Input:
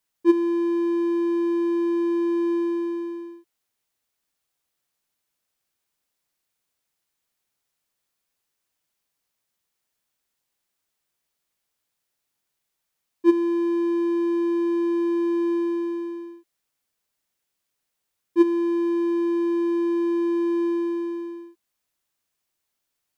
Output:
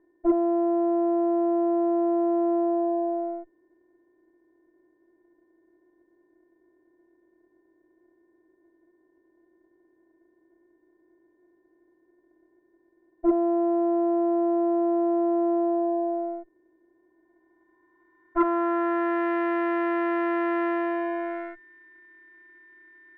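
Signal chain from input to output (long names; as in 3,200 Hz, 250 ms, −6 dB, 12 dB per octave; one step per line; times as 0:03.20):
compressor on every frequency bin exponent 0.4
steady tone 1,800 Hz −42 dBFS
harmonic generator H 3 −17 dB, 6 −27 dB, 7 −28 dB, 8 −17 dB, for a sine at −5 dBFS
low-pass filter sweep 600 Hz → 1,900 Hz, 0:16.89–0:19.31
level −6.5 dB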